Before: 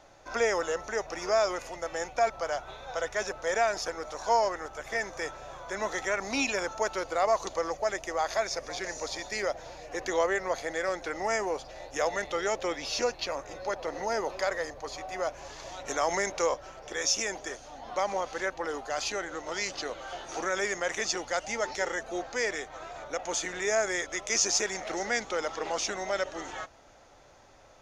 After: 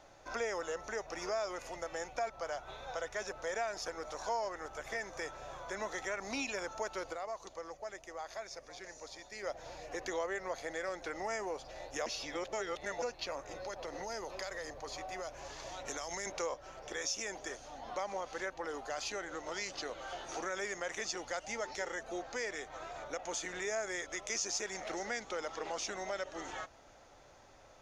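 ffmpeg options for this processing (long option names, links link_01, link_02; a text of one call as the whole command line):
ffmpeg -i in.wav -filter_complex "[0:a]asettb=1/sr,asplit=3[link_01][link_02][link_03];[link_01]atrim=end=13.524[link_04];[link_02]atrim=start=13.52:end=16.26,asetpts=PTS-STARTPTS,afade=type=in:duration=0.004:curve=qsin,afade=type=out:start_time=2.736:duration=0.004:curve=qsin,acrossover=split=130|3000[link_05][link_06][link_07];[link_06]acompressor=threshold=-34dB:ratio=6:attack=3.2:release=140:knee=2.83:detection=peak[link_08];[link_05][link_08][link_07]amix=inputs=3:normalize=0[link_09];[link_03]atrim=start=16.256[link_10];[link_04][link_09]acrossfade=duration=0.004:curve1=hsin:curve2=qsin[link_11];[link_11][link_10]acrossfade=duration=0.004:curve1=qsin:curve2=hsin,asplit=5[link_12][link_13][link_14][link_15][link_16];[link_12]atrim=end=7.38,asetpts=PTS-STARTPTS,afade=type=out:start_time=7.12:duration=0.26:curve=exp:silence=0.298538[link_17];[link_13]atrim=start=7.38:end=9.22,asetpts=PTS-STARTPTS,volume=-10.5dB[link_18];[link_14]atrim=start=9.22:end=12.062,asetpts=PTS-STARTPTS,afade=type=in:duration=0.26:curve=exp:silence=0.298538[link_19];[link_15]atrim=start=12.058:end=13.022,asetpts=PTS-STARTPTS,areverse[link_20];[link_16]atrim=start=13.018[link_21];[link_17][link_18][link_19]concat=n=3:v=0:a=1[link_22];[link_22][link_20]acrossfade=duration=0.004:curve1=hsin:curve2=hsin[link_23];[link_23][link_21]acrossfade=duration=0.004:curve1=hsin:curve2=hsin,acompressor=threshold=-36dB:ratio=2,volume=-3dB" out.wav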